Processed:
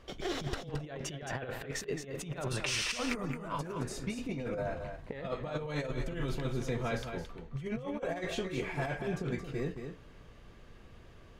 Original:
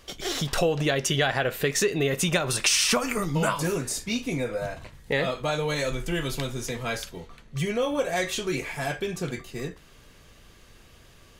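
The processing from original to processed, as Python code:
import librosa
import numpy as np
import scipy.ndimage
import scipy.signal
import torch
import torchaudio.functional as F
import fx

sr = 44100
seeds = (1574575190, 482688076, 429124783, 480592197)

p1 = fx.lowpass(x, sr, hz=1300.0, slope=6)
p2 = fx.over_compress(p1, sr, threshold_db=-31.0, ratio=-0.5)
p3 = p2 + fx.echo_single(p2, sr, ms=220, db=-7.5, dry=0)
y = p3 * librosa.db_to_amplitude(-4.5)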